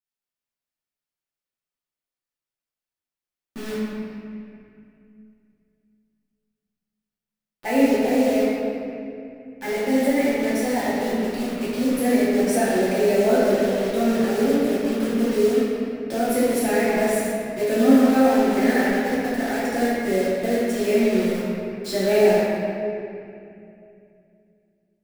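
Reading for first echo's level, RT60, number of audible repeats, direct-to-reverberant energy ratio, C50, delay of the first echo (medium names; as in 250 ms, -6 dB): no echo, 2.5 s, no echo, -10.5 dB, -3.5 dB, no echo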